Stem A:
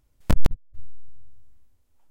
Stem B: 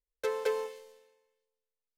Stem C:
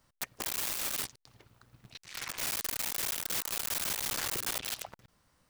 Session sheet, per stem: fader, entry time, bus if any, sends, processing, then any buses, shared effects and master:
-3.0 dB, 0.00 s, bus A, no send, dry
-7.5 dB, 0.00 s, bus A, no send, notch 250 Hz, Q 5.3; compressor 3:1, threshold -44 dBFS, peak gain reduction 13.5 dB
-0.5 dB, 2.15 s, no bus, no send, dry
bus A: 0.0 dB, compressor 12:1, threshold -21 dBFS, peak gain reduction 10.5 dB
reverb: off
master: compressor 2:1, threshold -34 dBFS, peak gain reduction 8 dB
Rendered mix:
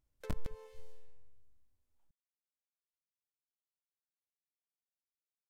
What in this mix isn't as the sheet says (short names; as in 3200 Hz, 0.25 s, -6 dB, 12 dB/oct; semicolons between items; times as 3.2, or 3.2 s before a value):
stem A -3.0 dB -> -15.0 dB; stem C: muted